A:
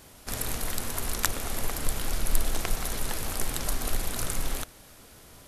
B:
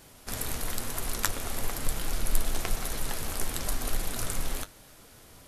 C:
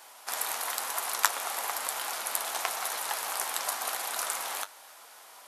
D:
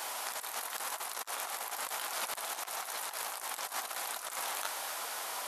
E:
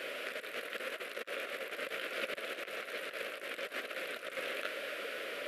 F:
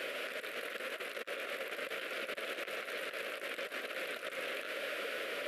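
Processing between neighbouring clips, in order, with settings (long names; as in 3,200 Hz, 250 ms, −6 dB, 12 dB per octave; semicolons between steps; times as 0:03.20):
flanger 1 Hz, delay 5.6 ms, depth 7.1 ms, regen −55%; level +2.5 dB
high-pass with resonance 860 Hz, resonance Q 2; level +2.5 dB
compressor whose output falls as the input rises −40 dBFS, ratio −0.5; level +3.5 dB
drawn EQ curve 110 Hz 0 dB, 160 Hz +7 dB, 560 Hz +13 dB, 860 Hz −22 dB, 1,400 Hz +2 dB, 2,600 Hz +7 dB, 6,300 Hz −17 dB, 13,000 Hz −15 dB; level −1.5 dB
brickwall limiter −32 dBFS, peak gain reduction 10 dB; level +2 dB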